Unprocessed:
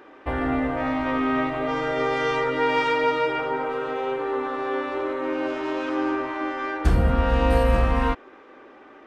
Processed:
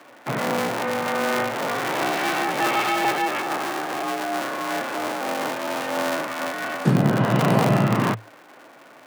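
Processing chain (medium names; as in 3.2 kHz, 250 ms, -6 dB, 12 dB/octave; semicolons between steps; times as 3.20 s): cycle switcher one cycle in 2, inverted; frequency shift +110 Hz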